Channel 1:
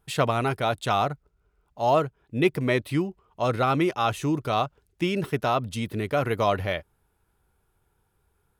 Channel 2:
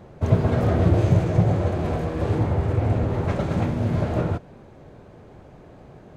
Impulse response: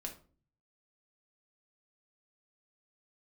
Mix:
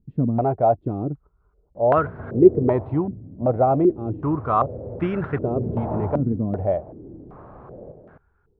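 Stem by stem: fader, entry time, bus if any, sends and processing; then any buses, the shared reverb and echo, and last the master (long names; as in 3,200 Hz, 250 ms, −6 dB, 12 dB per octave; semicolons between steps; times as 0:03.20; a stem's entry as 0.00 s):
−1.5 dB, 0.00 s, no send, no echo send, spectral tilt −1.5 dB per octave
0:02.66 −6 dB → 0:02.99 −13.5 dB → 0:03.88 −13.5 dB → 0:04.53 −7 dB → 0:05.34 −7 dB → 0:05.63 0 dB, 1.75 s, no send, echo send −5 dB, downward compressor 2.5 to 1, threshold −31 dBFS, peak gain reduction 13 dB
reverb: not used
echo: single-tap delay 259 ms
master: low-pass on a step sequencer 2.6 Hz 250–1,500 Hz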